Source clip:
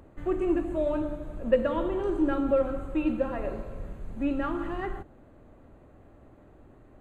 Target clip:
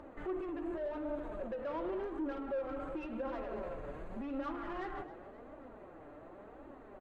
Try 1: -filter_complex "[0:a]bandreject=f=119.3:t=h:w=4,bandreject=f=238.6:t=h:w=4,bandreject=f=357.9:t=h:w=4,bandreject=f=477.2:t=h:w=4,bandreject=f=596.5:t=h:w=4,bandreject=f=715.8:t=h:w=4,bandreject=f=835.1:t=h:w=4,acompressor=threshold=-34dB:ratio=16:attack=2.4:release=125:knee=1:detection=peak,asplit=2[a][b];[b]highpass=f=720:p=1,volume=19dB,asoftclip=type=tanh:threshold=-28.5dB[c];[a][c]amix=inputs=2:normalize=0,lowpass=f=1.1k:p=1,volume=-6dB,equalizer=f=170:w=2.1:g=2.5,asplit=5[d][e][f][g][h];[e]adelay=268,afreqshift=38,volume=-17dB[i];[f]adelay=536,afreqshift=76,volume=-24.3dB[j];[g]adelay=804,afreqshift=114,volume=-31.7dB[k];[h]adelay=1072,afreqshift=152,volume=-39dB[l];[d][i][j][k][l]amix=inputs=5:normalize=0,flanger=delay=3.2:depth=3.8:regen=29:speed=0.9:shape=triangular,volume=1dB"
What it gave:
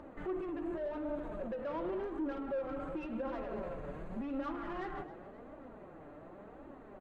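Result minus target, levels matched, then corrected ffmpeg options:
125 Hz band +2.5 dB
-filter_complex "[0:a]bandreject=f=119.3:t=h:w=4,bandreject=f=238.6:t=h:w=4,bandreject=f=357.9:t=h:w=4,bandreject=f=477.2:t=h:w=4,bandreject=f=596.5:t=h:w=4,bandreject=f=715.8:t=h:w=4,bandreject=f=835.1:t=h:w=4,acompressor=threshold=-34dB:ratio=16:attack=2.4:release=125:knee=1:detection=peak,asplit=2[a][b];[b]highpass=f=720:p=1,volume=19dB,asoftclip=type=tanh:threshold=-28.5dB[c];[a][c]amix=inputs=2:normalize=0,lowpass=f=1.1k:p=1,volume=-6dB,equalizer=f=170:w=2.1:g=-5,asplit=5[d][e][f][g][h];[e]adelay=268,afreqshift=38,volume=-17dB[i];[f]adelay=536,afreqshift=76,volume=-24.3dB[j];[g]adelay=804,afreqshift=114,volume=-31.7dB[k];[h]adelay=1072,afreqshift=152,volume=-39dB[l];[d][i][j][k][l]amix=inputs=5:normalize=0,flanger=delay=3.2:depth=3.8:regen=29:speed=0.9:shape=triangular,volume=1dB"

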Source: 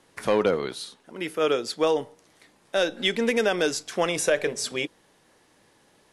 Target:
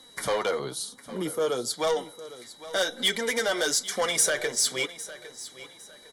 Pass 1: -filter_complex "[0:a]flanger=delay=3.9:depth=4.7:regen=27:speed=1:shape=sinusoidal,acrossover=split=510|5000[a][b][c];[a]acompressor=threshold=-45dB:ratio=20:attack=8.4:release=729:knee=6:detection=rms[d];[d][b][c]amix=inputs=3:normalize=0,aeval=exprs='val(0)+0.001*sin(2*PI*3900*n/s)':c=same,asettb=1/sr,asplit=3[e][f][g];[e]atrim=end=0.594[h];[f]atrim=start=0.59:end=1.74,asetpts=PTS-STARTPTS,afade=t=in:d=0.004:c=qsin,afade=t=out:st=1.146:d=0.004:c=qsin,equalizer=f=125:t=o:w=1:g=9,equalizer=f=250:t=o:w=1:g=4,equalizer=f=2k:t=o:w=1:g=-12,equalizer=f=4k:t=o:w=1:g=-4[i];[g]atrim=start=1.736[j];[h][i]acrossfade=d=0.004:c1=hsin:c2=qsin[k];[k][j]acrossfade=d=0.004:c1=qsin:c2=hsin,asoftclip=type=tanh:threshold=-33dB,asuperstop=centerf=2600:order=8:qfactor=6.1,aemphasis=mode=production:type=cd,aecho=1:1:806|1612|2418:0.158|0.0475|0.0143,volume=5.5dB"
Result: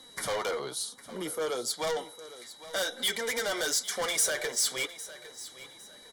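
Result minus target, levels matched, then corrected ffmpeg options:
compressor: peak gain reduction +8.5 dB; soft clip: distortion +7 dB
-filter_complex "[0:a]flanger=delay=3.9:depth=4.7:regen=27:speed=1:shape=sinusoidal,acrossover=split=510|5000[a][b][c];[a]acompressor=threshold=-36dB:ratio=20:attack=8.4:release=729:knee=6:detection=rms[d];[d][b][c]amix=inputs=3:normalize=0,aeval=exprs='val(0)+0.001*sin(2*PI*3900*n/s)':c=same,asettb=1/sr,asplit=3[e][f][g];[e]atrim=end=0.594[h];[f]atrim=start=0.59:end=1.74,asetpts=PTS-STARTPTS,afade=t=in:d=0.004:c=qsin,afade=t=out:st=1.146:d=0.004:c=qsin,equalizer=f=125:t=o:w=1:g=9,equalizer=f=250:t=o:w=1:g=4,equalizer=f=2k:t=o:w=1:g=-12,equalizer=f=4k:t=o:w=1:g=-4[i];[g]atrim=start=1.736[j];[h][i]acrossfade=d=0.004:c1=hsin:c2=qsin[k];[k][j]acrossfade=d=0.004:c1=qsin:c2=hsin,asoftclip=type=tanh:threshold=-24.5dB,asuperstop=centerf=2600:order=8:qfactor=6.1,aemphasis=mode=production:type=cd,aecho=1:1:806|1612|2418:0.158|0.0475|0.0143,volume=5.5dB"

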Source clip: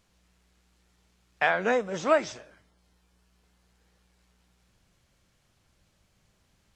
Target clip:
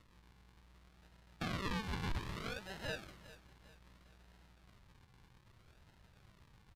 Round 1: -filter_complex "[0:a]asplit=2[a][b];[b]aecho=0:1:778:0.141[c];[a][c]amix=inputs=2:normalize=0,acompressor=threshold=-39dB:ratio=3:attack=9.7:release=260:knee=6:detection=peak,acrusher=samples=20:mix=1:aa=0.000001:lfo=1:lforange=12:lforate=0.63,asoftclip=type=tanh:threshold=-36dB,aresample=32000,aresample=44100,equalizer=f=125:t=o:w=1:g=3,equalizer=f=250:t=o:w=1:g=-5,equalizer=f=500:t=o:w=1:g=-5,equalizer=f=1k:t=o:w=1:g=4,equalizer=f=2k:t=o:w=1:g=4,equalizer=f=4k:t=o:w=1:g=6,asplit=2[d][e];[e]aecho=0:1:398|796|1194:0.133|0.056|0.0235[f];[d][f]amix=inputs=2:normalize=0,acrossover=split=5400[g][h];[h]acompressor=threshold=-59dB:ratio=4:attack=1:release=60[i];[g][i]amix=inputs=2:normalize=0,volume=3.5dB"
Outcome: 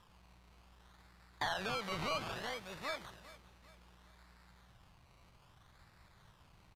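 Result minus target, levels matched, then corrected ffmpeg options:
decimation with a swept rate: distortion -27 dB
-filter_complex "[0:a]asplit=2[a][b];[b]aecho=0:1:778:0.141[c];[a][c]amix=inputs=2:normalize=0,acompressor=threshold=-39dB:ratio=3:attack=9.7:release=260:knee=6:detection=peak,acrusher=samples=54:mix=1:aa=0.000001:lfo=1:lforange=32.4:lforate=0.63,asoftclip=type=tanh:threshold=-36dB,aresample=32000,aresample=44100,equalizer=f=125:t=o:w=1:g=3,equalizer=f=250:t=o:w=1:g=-5,equalizer=f=500:t=o:w=1:g=-5,equalizer=f=1k:t=o:w=1:g=4,equalizer=f=2k:t=o:w=1:g=4,equalizer=f=4k:t=o:w=1:g=6,asplit=2[d][e];[e]aecho=0:1:398|796|1194:0.133|0.056|0.0235[f];[d][f]amix=inputs=2:normalize=0,acrossover=split=5400[g][h];[h]acompressor=threshold=-59dB:ratio=4:attack=1:release=60[i];[g][i]amix=inputs=2:normalize=0,volume=3.5dB"

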